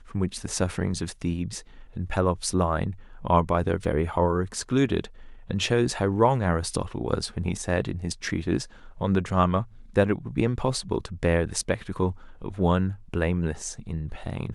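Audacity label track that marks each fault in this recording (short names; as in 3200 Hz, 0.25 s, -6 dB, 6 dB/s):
3.840000	3.840000	gap 2 ms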